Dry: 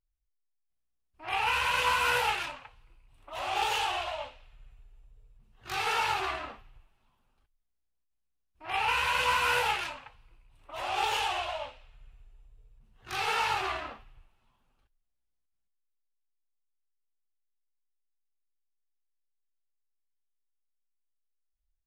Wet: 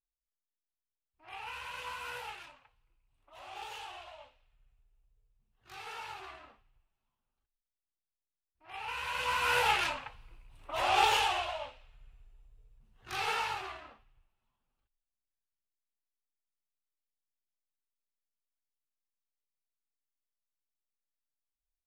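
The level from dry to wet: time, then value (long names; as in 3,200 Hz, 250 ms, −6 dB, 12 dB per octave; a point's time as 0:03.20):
0:08.65 −15 dB
0:09.34 −5 dB
0:09.89 +4.5 dB
0:10.96 +4.5 dB
0:11.55 −3 dB
0:13.30 −3 dB
0:13.78 −12 dB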